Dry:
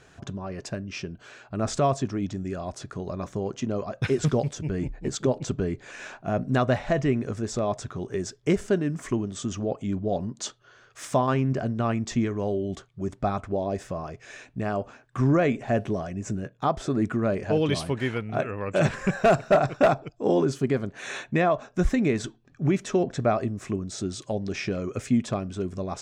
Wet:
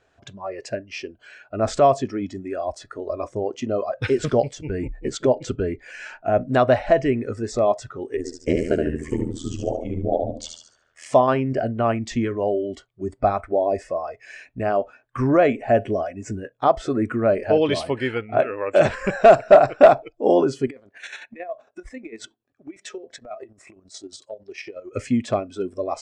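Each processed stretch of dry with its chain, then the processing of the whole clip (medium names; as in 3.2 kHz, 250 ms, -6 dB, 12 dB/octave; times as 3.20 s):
8.17–11.06 s: peaking EQ 100 Hz +5 dB 2.1 oct + AM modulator 81 Hz, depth 95% + feedback delay 73 ms, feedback 50%, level -4 dB
20.67–24.93 s: high-pass 200 Hz 6 dB/octave + compression 12:1, threshold -32 dBFS + square tremolo 11 Hz, depth 60%, duty 40%
whole clip: low-pass 8.5 kHz 24 dB/octave; spectral noise reduction 14 dB; fifteen-band graphic EQ 160 Hz -10 dB, 630 Hz +6 dB, 6.3 kHz -5 dB; trim +4 dB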